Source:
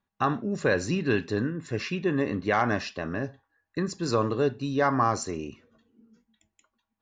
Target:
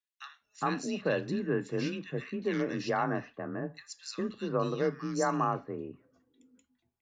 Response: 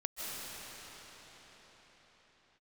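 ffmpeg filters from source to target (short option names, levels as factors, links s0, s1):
-filter_complex "[0:a]afreqshift=30,acrossover=split=1900[s0][s1];[s0]adelay=410[s2];[s2][s1]amix=inputs=2:normalize=0,volume=0.562"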